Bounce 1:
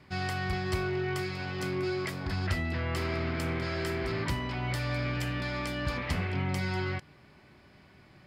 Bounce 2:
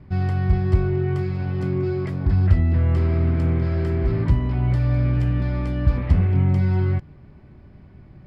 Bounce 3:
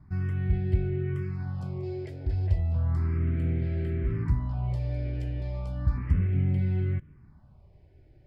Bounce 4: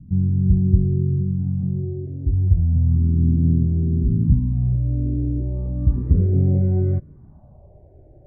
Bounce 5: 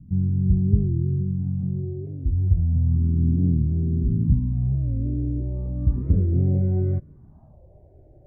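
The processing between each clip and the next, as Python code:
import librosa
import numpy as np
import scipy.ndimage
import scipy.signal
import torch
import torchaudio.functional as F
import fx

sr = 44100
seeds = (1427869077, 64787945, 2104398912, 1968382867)

y1 = fx.tilt_eq(x, sr, slope=-4.5)
y2 = fx.phaser_stages(y1, sr, stages=4, low_hz=190.0, high_hz=1100.0, hz=0.34, feedback_pct=5)
y2 = y2 * librosa.db_to_amplitude(-7.0)
y3 = fx.filter_sweep_lowpass(y2, sr, from_hz=220.0, to_hz=640.0, start_s=4.56, end_s=7.01, q=2.8)
y3 = y3 * librosa.db_to_amplitude(7.5)
y4 = fx.record_warp(y3, sr, rpm=45.0, depth_cents=160.0)
y4 = y4 * librosa.db_to_amplitude(-3.0)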